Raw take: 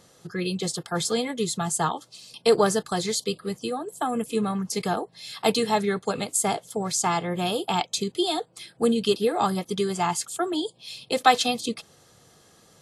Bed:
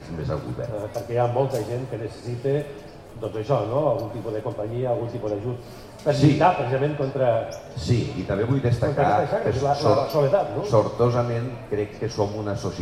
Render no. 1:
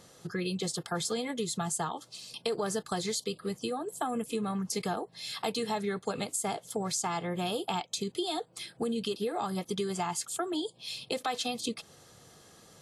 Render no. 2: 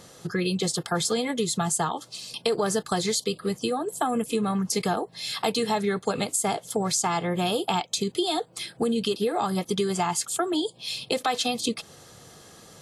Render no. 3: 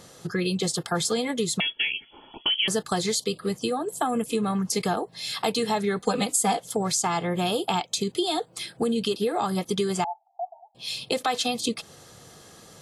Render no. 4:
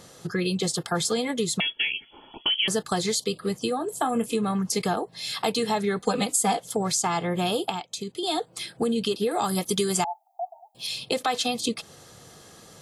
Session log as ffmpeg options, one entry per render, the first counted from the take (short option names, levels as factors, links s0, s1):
-af "alimiter=limit=0.168:level=0:latency=1:release=155,acompressor=threshold=0.0251:ratio=2.5"
-af "volume=2.24"
-filter_complex "[0:a]asettb=1/sr,asplit=3[s0][s1][s2];[s0]atrim=end=1.604[s3];[s1]atrim=start=1.6:end=2.68,asetpts=PTS-STARTPTS,afade=t=in:d=0.004:c=qsin,afade=t=out:st=1.076:d=0.004:c=qsin,lowpass=f=3000:t=q:w=0.5098,lowpass=f=3000:t=q:w=0.6013,lowpass=f=3000:t=q:w=0.9,lowpass=f=3000:t=q:w=2.563,afreqshift=-3500[s4];[s2]atrim=start=2.676[s5];[s3][s4]acrossfade=d=0.004:c1=hsin:c2=qsin[s6];[s6][s5]acrossfade=d=0.004:c1=qsin:c2=hsin,asettb=1/sr,asplit=3[s7][s8][s9];[s7]atrim=end=5.994[s10];[s8]atrim=start=5.99:end=6.6,asetpts=PTS-STARTPTS,afade=t=in:d=0.004:c=qsin,afade=t=out:st=0.606:d=0.004:c=qsin,aecho=1:1:4:0.88,atrim=end_sample=26901[s11];[s9]atrim=start=6.596[s12];[s10][s11]acrossfade=d=0.004:c1=hsin:c2=qsin[s13];[s13][s12]acrossfade=d=0.004:c1=qsin:c2=hsin,asettb=1/sr,asplit=3[s14][s15][s16];[s14]atrim=end=10.044[s17];[s15]atrim=start=10.04:end=10.75,asetpts=PTS-STARTPTS,afade=t=in:d=0.004:c=qsin,afade=t=out:st=0.706:d=0.004:c=qsin,asuperpass=centerf=770:order=8:qfactor=3.9[s18];[s16]atrim=start=10.746[s19];[s17][s18]acrossfade=d=0.004:c1=hsin:c2=qsin[s20];[s20][s19]acrossfade=d=0.004:c1=qsin:c2=hsin"
-filter_complex "[0:a]asettb=1/sr,asplit=3[s0][s1][s2];[s0]atrim=end=3.784[s3];[s1]atrim=start=3.78:end=4.34,asetpts=PTS-STARTPTS,afade=t=in:d=0.004:c=qsin,afade=t=out:st=0.556:d=0.004:c=qsin,asplit=2[s4][s5];[s5]adelay=26,volume=0.237[s6];[s4][s6]amix=inputs=2:normalize=0,atrim=end_sample=24696[s7];[s2]atrim=start=4.336[s8];[s3][s7]acrossfade=d=0.004:c1=hsin:c2=qsin[s9];[s9][s8]acrossfade=d=0.004:c1=qsin:c2=hsin,asettb=1/sr,asplit=3[s10][s11][s12];[s10]atrim=end=9.314[s13];[s11]atrim=start=9.31:end=10.87,asetpts=PTS-STARTPTS,afade=t=in:d=0.004:c=qsin,afade=t=out:st=1.556:d=0.004:c=qsin,aemphasis=mode=production:type=50kf[s14];[s12]atrim=start=10.866[s15];[s13][s14]acrossfade=d=0.004:c1=hsin:c2=qsin[s16];[s16][s15]acrossfade=d=0.004:c1=qsin:c2=hsin,asplit=3[s17][s18][s19];[s17]atrim=end=7.702[s20];[s18]atrim=start=7.698:end=8.232,asetpts=PTS-STARTPTS,volume=0.473[s21];[s19]atrim=start=8.228[s22];[s20][s21]acrossfade=d=0.004:c1=hsin:c2=hsin[s23];[s23][s22]acrossfade=d=0.004:c1=hsin:c2=hsin"